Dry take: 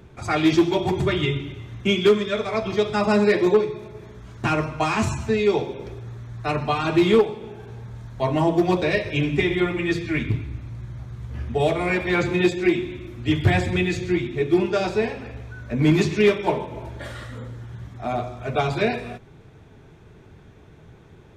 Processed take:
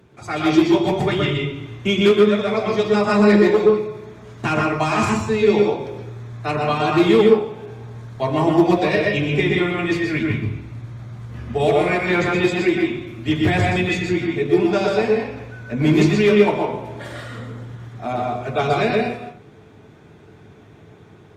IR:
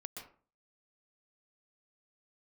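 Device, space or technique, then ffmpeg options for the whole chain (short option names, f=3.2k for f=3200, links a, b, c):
far-field microphone of a smart speaker: -filter_complex "[1:a]atrim=start_sample=2205[a];[0:a][a]afir=irnorm=-1:irlink=0,highpass=110,dynaudnorm=f=350:g=3:m=4.5dB,volume=2.5dB" -ar 48000 -c:a libopus -b:a 48k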